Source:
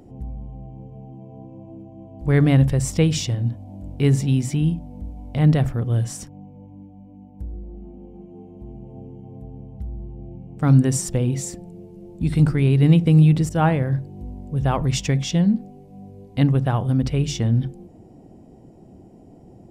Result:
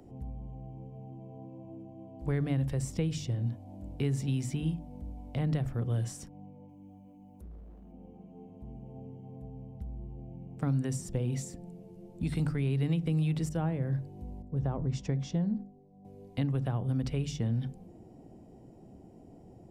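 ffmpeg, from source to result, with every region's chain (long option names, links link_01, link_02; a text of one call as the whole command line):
ffmpeg -i in.wav -filter_complex "[0:a]asettb=1/sr,asplit=3[link_01][link_02][link_03];[link_01]atrim=end=6.694[link_04];[link_02]atrim=start=6.69:end=7.92,asetpts=PTS-STARTPTS,afade=type=in:duration=0.004:curve=qsin,afade=type=out:start_time=1.226:duration=0.004:curve=qsin,highshelf=frequency=3500:gain=12,asoftclip=type=hard:threshold=-33dB,acompressor=threshold=-41dB:ratio=2:attack=3.2:release=140:knee=1:detection=peak[link_05];[link_03]atrim=start=7.916[link_06];[link_04][link_05]acrossfade=duration=0.004:curve1=hsin:curve2=qsin[link_07];[link_07][link_06]acrossfade=duration=0.004:curve1=qsin:curve2=hsin,asettb=1/sr,asplit=3[link_08][link_09][link_10];[link_08]atrim=end=14.424[link_11];[link_09]atrim=start=14.42:end=16.05,asetpts=PTS-STARTPTS,afade=type=in:duration=0.004:curve=qsin,afade=type=out:start_time=1.626:duration=0.004:curve=qsin,agate=range=-7dB:threshold=-36dB:ratio=16:release=100:detection=peak,lowpass=4500,equalizer=frequency=2800:width_type=o:width=1.6:gain=-12.5[link_12];[link_10]atrim=start=16.046[link_13];[link_11][link_12]acrossfade=duration=0.004:curve1=hsin:curve2=qsin[link_14];[link_14][link_13]acrossfade=duration=0.004:curve1=qsin:curve2=hsin,bandreject=frequency=50:width_type=h:width=6,bandreject=frequency=100:width_type=h:width=6,bandreject=frequency=150:width_type=h:width=6,bandreject=frequency=200:width_type=h:width=6,bandreject=frequency=250:width_type=h:width=6,bandreject=frequency=300:width_type=h:width=6,bandreject=frequency=350:width_type=h:width=6,acrossover=split=110|530[link_15][link_16][link_17];[link_15]acompressor=threshold=-33dB:ratio=4[link_18];[link_16]acompressor=threshold=-25dB:ratio=4[link_19];[link_17]acompressor=threshold=-38dB:ratio=4[link_20];[link_18][link_19][link_20]amix=inputs=3:normalize=0,volume=-5.5dB" out.wav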